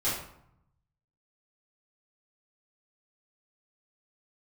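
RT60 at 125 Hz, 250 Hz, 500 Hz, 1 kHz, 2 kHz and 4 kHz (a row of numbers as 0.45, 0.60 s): 1.4, 1.0, 0.70, 0.75, 0.55, 0.45 s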